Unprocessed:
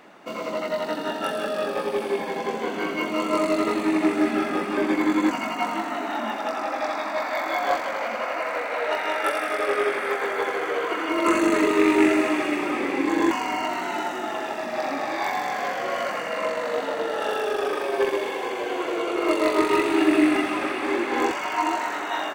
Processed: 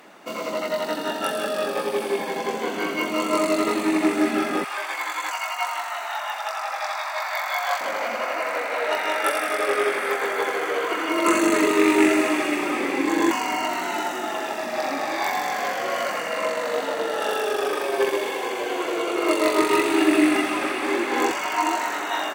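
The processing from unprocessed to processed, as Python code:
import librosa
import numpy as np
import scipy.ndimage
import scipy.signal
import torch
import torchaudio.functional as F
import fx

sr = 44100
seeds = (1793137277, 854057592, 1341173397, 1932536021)

y = fx.highpass(x, sr, hz=740.0, slope=24, at=(4.64, 7.81))
y = fx.highpass(y, sr, hz=120.0, slope=6)
y = fx.peak_eq(y, sr, hz=14000.0, db=8.0, octaves=1.9)
y = y * 10.0 ** (1.0 / 20.0)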